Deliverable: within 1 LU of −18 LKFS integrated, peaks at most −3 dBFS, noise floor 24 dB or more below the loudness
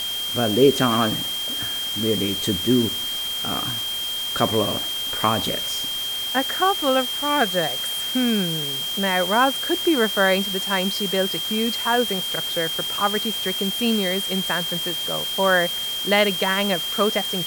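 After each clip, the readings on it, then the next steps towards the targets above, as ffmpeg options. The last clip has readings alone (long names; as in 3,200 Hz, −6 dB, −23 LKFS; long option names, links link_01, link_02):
interfering tone 3,200 Hz; level of the tone −25 dBFS; background noise floor −27 dBFS; target noise floor −45 dBFS; integrated loudness −21.0 LKFS; sample peak −4.0 dBFS; target loudness −18.0 LKFS
→ -af "bandreject=frequency=3200:width=30"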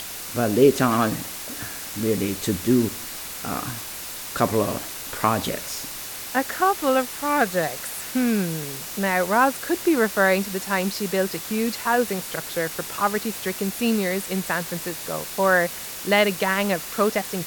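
interfering tone none found; background noise floor −35 dBFS; target noise floor −48 dBFS
→ -af "afftdn=noise_reduction=13:noise_floor=-35"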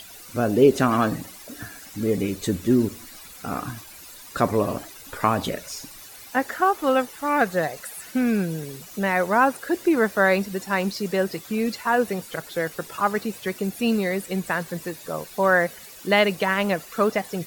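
background noise floor −44 dBFS; target noise floor −48 dBFS
→ -af "afftdn=noise_reduction=6:noise_floor=-44"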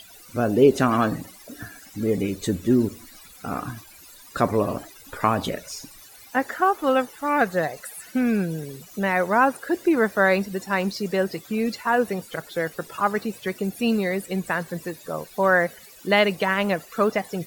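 background noise floor −47 dBFS; target noise floor −48 dBFS
→ -af "afftdn=noise_reduction=6:noise_floor=-47"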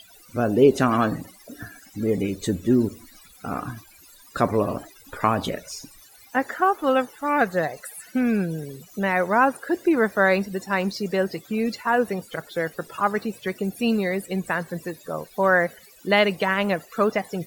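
background noise floor −51 dBFS; integrated loudness −23.5 LKFS; sample peak −5.0 dBFS; target loudness −18.0 LKFS
→ -af "volume=5.5dB,alimiter=limit=-3dB:level=0:latency=1"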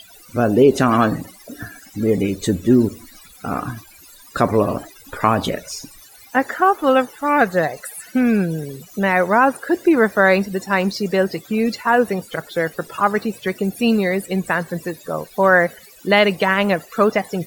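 integrated loudness −18.5 LKFS; sample peak −3.0 dBFS; background noise floor −45 dBFS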